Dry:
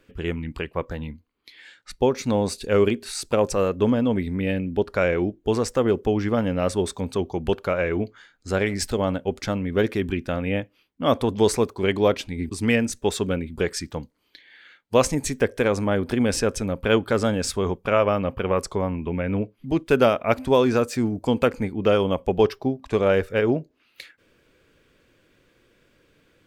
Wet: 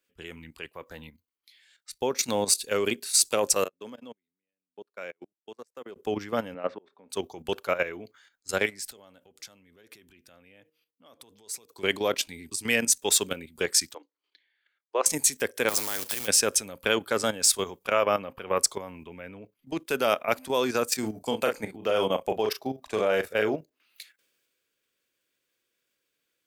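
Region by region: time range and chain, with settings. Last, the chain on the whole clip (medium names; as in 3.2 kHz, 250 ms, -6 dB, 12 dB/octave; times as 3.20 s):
3.64–5.96 s: high-pass 150 Hz + level held to a coarse grid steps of 22 dB + upward expansion 2.5:1, over -36 dBFS
6.54–7.10 s: slow attack 483 ms + band-pass 200–2500 Hz + distance through air 190 m
8.69–11.72 s: de-hum 156.7 Hz, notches 3 + compression 12:1, threshold -32 dBFS
13.94–15.06 s: rippled Chebyshev high-pass 280 Hz, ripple 3 dB + tape spacing loss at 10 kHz 25 dB
15.68–16.26 s: spectral peaks clipped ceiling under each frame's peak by 13 dB + compression 4:1, threshold -25 dBFS + companded quantiser 4-bit
20.99–23.55 s: peaking EQ 660 Hz +4.5 dB 0.59 oct + doubling 37 ms -7.5 dB
whole clip: level held to a coarse grid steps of 11 dB; RIAA curve recording; three bands expanded up and down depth 40%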